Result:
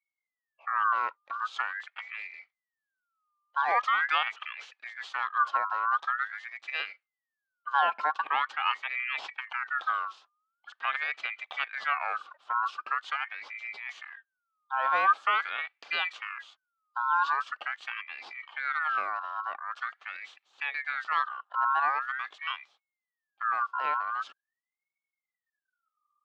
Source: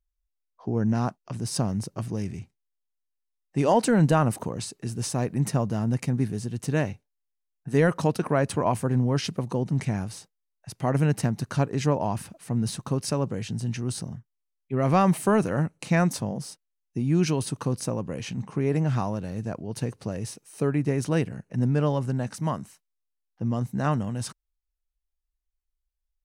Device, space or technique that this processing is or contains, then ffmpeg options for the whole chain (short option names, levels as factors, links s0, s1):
voice changer toy: -af "aeval=exprs='val(0)*sin(2*PI*1700*n/s+1700*0.3/0.44*sin(2*PI*0.44*n/s))':c=same,highpass=560,equalizer=f=790:t=q:w=4:g=6,equalizer=f=1200:t=q:w=4:g=10,equalizer=f=2000:t=q:w=4:g=-6,equalizer=f=3200:t=q:w=4:g=4,lowpass=f=4400:w=0.5412,lowpass=f=4400:w=1.3066,volume=0.531"